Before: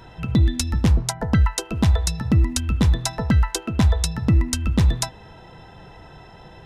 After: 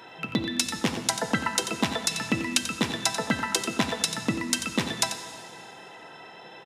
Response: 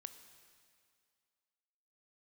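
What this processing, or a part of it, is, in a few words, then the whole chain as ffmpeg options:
PA in a hall: -filter_complex "[0:a]highpass=110,highpass=280,equalizer=f=2500:t=o:w=1.4:g=5,aecho=1:1:90:0.299[s0];[1:a]atrim=start_sample=2205[s1];[s0][s1]afir=irnorm=-1:irlink=0,asettb=1/sr,asplit=3[s2][s3][s4];[s2]atrim=end=2.114[s5];[s3]atrim=start=2.11:end=2.58,asetpts=PTS-STARTPTS,afade=t=in:d=0.004:c=qsin,afade=t=out:st=0.466:d=0.004:c=qsin,equalizer=f=2600:t=o:w=0.77:g=6.5[s6];[s4]atrim=start=2.576[s7];[s5][s6]acrossfade=d=0.004:c1=hsin:c2=qsin[s8];[s8][s7]acrossfade=d=0.004:c1=qsin:c2=hsin,volume=1.78"

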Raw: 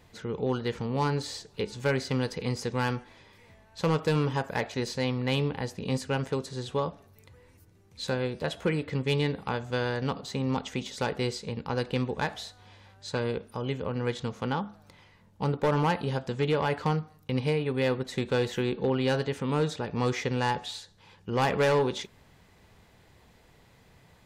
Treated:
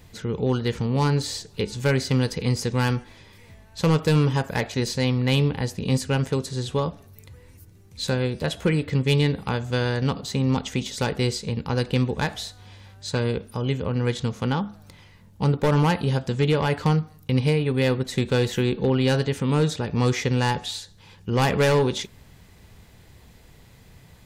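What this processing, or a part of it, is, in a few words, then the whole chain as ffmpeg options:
smiley-face EQ: -af "lowshelf=f=140:g=6,equalizer=f=840:t=o:w=2.4:g=-4,highshelf=f=8100:g=6.5,volume=2"

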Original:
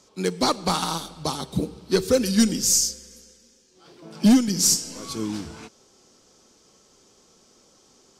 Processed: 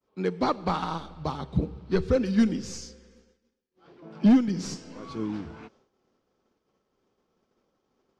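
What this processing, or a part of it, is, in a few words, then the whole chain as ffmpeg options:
hearing-loss simulation: -filter_complex "[0:a]asettb=1/sr,asplit=3[s0][s1][s2];[s0]atrim=end=0.454[s3];[s1]atrim=start=0.45:end=2.16,asetpts=PTS-STARTPTS,afade=t=in:d=0.004:c=qsin,afade=t=out:st=1.706:d=0.004:c=qsin,asubboost=boost=7:cutoff=140[s4];[s2]atrim=start=2.156[s5];[s3][s4]acrossfade=d=0.004:c1=hsin:c2=qsin[s6];[s6][s5]acrossfade=d=0.004:c1=qsin:c2=hsin,lowpass=2200,agate=range=0.0224:threshold=0.00251:ratio=3:detection=peak,volume=0.75"

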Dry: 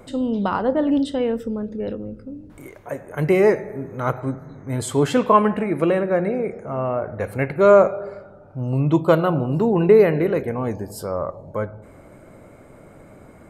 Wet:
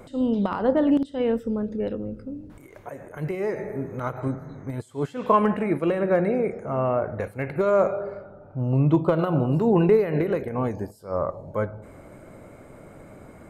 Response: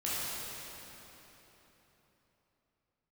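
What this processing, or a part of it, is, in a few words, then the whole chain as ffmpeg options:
de-esser from a sidechain: -filter_complex "[0:a]asettb=1/sr,asplit=3[s0][s1][s2];[s0]atrim=end=8.024[s3];[s1]atrim=start=8.02:end=9.19,asetpts=PTS-STARTPTS,afade=t=in:d=0.004:c=qsin,afade=t=out:st=1.166:d=0.004:c=qsin,aemphasis=mode=reproduction:type=75kf[s4];[s2]atrim=start=9.186[s5];[s3][s4]acrossfade=d=0.004:c1=hsin:c2=qsin[s6];[s6][s5]acrossfade=d=0.004:c1=qsin:c2=hsin,asplit=2[s7][s8];[s8]highpass=f=4700:w=0.5412,highpass=f=4700:w=1.3066,apad=whole_len=595208[s9];[s7][s9]sidechaincompress=threshold=0.00178:ratio=5:attack=0.62:release=94"

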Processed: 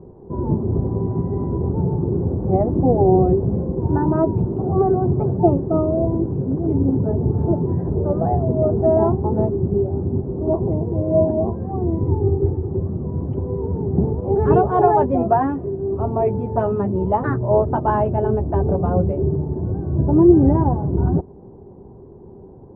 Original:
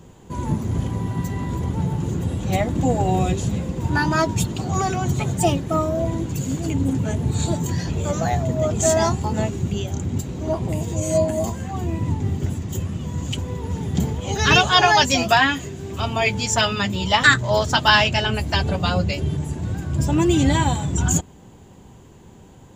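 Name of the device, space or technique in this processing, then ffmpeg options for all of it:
under water: -filter_complex "[0:a]asettb=1/sr,asplit=3[s0][s1][s2];[s0]atrim=end=12.034[s3];[s1]atrim=start=12.03:end=12.71,asetpts=PTS-STARTPTS,afade=t=in:d=0.004:c=qsin,afade=t=out:st=0.676:d=0.004:c=qsin,aecho=1:1:2.4:0.66,atrim=end_sample=29988[s4];[s2]atrim=start=12.706[s5];[s3][s4]acrossfade=d=0.004:c1=hsin:c2=qsin[s6];[s6][s5]acrossfade=d=0.004:c1=qsin:c2=hsin,lowpass=f=890:w=0.5412,lowpass=f=890:w=1.3066,equalizer=f=390:t=o:w=0.39:g=11,volume=1.26"

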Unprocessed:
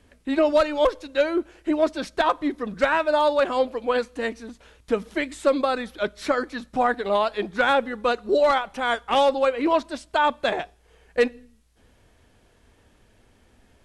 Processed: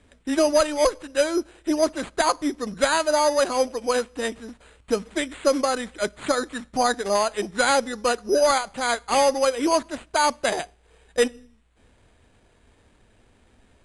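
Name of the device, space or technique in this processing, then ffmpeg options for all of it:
crushed at another speed: -af "asetrate=88200,aresample=44100,acrusher=samples=4:mix=1:aa=0.000001,asetrate=22050,aresample=44100"

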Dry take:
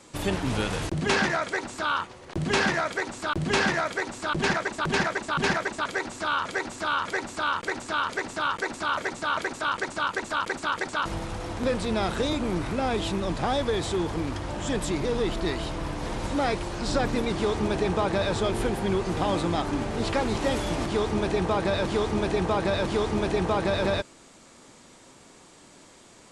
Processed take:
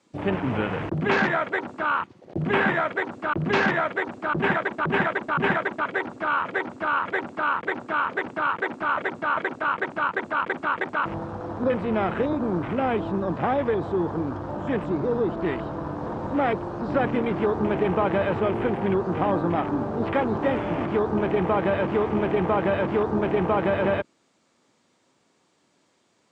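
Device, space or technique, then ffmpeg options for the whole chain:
over-cleaned archive recording: -filter_complex "[0:a]acrossover=split=3200[s0][s1];[s1]acompressor=threshold=0.00398:ratio=4:attack=1:release=60[s2];[s0][s2]amix=inputs=2:normalize=0,highpass=110,lowpass=6600,afwtdn=0.0158,volume=1.41"

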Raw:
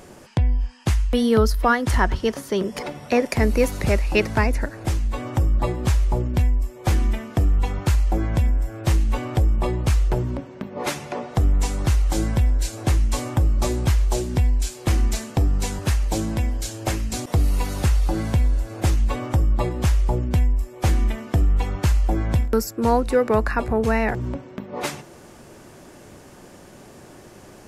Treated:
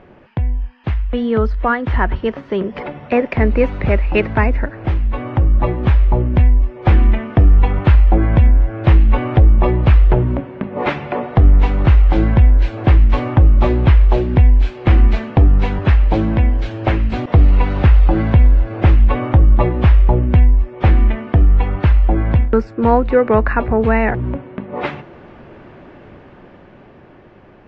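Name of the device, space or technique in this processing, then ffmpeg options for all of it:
action camera in a waterproof case: -af "lowpass=f=2800:w=0.5412,lowpass=f=2800:w=1.3066,lowshelf=f=74:g=2,dynaudnorm=f=300:g=13:m=3.76" -ar 32000 -c:a aac -b:a 48k

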